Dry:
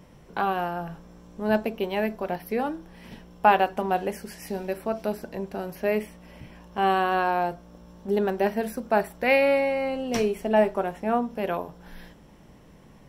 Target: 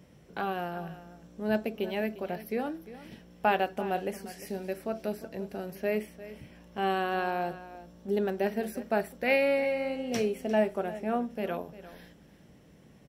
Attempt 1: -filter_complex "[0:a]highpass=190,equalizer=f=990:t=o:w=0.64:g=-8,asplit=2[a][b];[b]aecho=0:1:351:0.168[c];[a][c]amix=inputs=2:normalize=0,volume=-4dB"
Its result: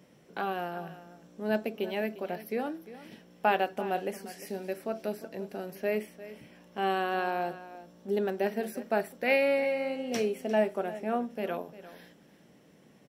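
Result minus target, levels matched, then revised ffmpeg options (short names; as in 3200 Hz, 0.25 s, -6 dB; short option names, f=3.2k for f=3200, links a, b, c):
125 Hz band -2.5 dB
-filter_complex "[0:a]highpass=63,equalizer=f=990:t=o:w=0.64:g=-8,asplit=2[a][b];[b]aecho=0:1:351:0.168[c];[a][c]amix=inputs=2:normalize=0,volume=-4dB"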